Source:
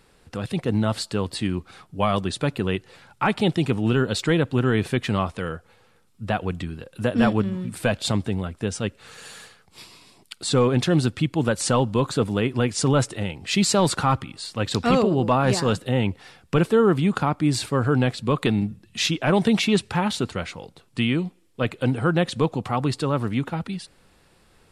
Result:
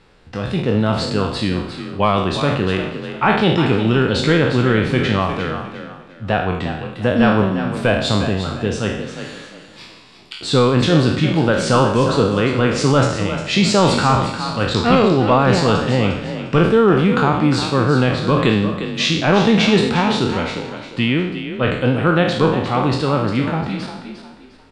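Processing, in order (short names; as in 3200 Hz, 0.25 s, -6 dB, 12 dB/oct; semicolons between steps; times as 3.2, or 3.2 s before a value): spectral trails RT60 0.73 s; LPF 4700 Hz 12 dB/oct; on a send: frequency-shifting echo 0.353 s, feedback 31%, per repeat +36 Hz, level -10 dB; on the sum: gain +4 dB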